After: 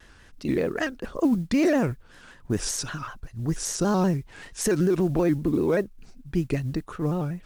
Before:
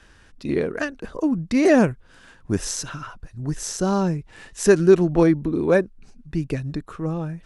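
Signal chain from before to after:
brickwall limiter −14 dBFS, peak gain reduction 11.5 dB
noise that follows the level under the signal 33 dB
pitch modulation by a square or saw wave square 5.2 Hz, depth 100 cents

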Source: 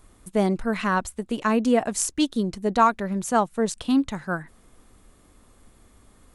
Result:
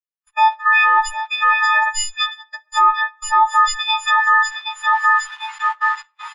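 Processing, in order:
every partial snapped to a pitch grid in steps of 6 semitones
repeating echo 762 ms, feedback 42%, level −11 dB
bit reduction 7 bits
automatic gain control gain up to 16.5 dB
Butterworth high-pass 880 Hz 48 dB per octave
noise gate −29 dBFS, range −26 dB
on a send at −15.5 dB: convolution reverb RT60 0.70 s, pre-delay 7 ms
on the sum: harmonic generator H 2 −14 dB, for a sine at 0 dBFS
downward compressor 1.5 to 1, threshold −19 dBFS, peak gain reduction 5 dB
head-to-tape spacing loss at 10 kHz 31 dB
boost into a limiter +21.5 dB
every bin expanded away from the loudest bin 1.5 to 1
level −3.5 dB

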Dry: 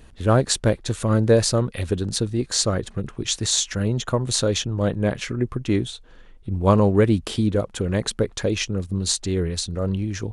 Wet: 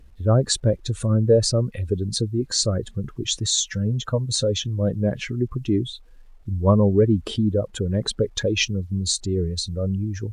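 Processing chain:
expanding power law on the bin magnitudes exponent 1.7
0:03.66–0:04.62: notch comb filter 360 Hz
0:08.09–0:08.70: dynamic equaliser 4,000 Hz, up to +7 dB, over −40 dBFS, Q 0.73
bit reduction 11 bits
Ogg Vorbis 96 kbit/s 32,000 Hz

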